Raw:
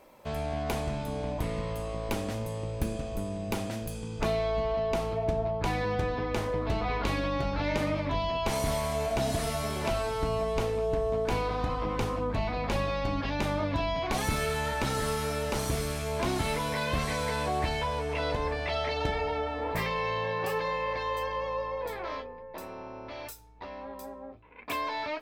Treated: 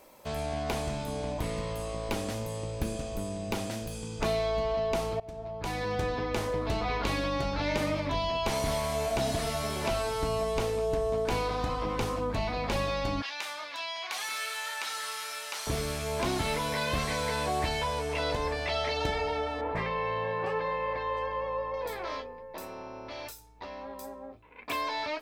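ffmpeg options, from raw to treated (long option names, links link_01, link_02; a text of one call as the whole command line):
ffmpeg -i in.wav -filter_complex "[0:a]asettb=1/sr,asplit=3[link_01][link_02][link_03];[link_01]atrim=end=13.224[link_04];[link_02]atrim=start=13.22:end=15.67,asetpts=PTS-STARTPTS,afade=type=in:duration=0.004:curve=qsin,afade=type=out:start_time=2.446:duration=0.004:curve=qsin,highpass=1300[link_05];[link_03]atrim=start=15.666[link_06];[link_04][link_05]acrossfade=duration=0.004:curve1=hsin:curve2=qsin[link_07];[link_07][link_06]acrossfade=duration=0.004:curve1=qsin:curve2=hsin,asettb=1/sr,asplit=3[link_08][link_09][link_10];[link_08]atrim=end=19.614[link_11];[link_09]atrim=start=19.61:end=21.74,asetpts=PTS-STARTPTS,afade=type=in:duration=0.004:curve=qsin,afade=type=out:start_time=2.126:duration=0.004:curve=qsin,lowpass=2100[link_12];[link_10]atrim=start=21.736[link_13];[link_11][link_12]acrossfade=duration=0.004:curve1=hsin:curve2=qsin[link_14];[link_14][link_13]acrossfade=duration=0.004:curve1=qsin:curve2=hsin,asplit=2[link_15][link_16];[link_15]atrim=end=5.2,asetpts=PTS-STARTPTS,afade=type=out:start_time=5.196:duration=0.004:curve=hsin:silence=0.105925[link_17];[link_16]atrim=start=5.2,asetpts=PTS-STARTPTS,afade=type=in:duration=0.85:silence=0.105925[link_18];[link_17][link_18]concat=n=2:v=0:a=1,bass=frequency=250:gain=-2,treble=frequency=4000:gain=8,acrossover=split=4700[link_19][link_20];[link_20]acompressor=threshold=-43dB:ratio=4:attack=1:release=60[link_21];[link_19][link_21]amix=inputs=2:normalize=0" out.wav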